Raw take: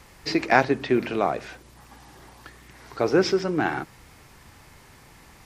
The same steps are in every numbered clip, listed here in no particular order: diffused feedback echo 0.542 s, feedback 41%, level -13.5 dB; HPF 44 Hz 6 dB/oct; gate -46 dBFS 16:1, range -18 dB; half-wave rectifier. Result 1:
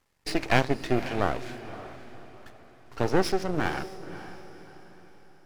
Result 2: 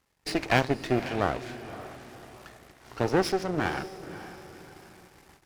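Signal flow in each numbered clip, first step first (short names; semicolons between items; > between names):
HPF > half-wave rectifier > gate > diffused feedback echo; half-wave rectifier > diffused feedback echo > gate > HPF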